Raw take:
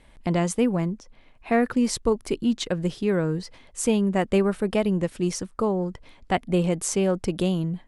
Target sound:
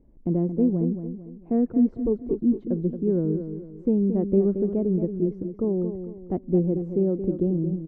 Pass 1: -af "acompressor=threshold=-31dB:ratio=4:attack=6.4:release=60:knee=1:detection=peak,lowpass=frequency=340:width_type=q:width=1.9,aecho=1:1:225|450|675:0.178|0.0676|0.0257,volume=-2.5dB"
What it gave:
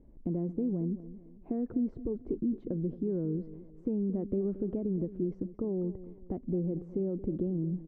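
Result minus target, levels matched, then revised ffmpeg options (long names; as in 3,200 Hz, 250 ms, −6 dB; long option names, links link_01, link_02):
downward compressor: peak gain reduction +12.5 dB; echo-to-direct −6 dB
-af "lowpass=frequency=340:width_type=q:width=1.9,aecho=1:1:225|450|675|900:0.355|0.135|0.0512|0.0195,volume=-2.5dB"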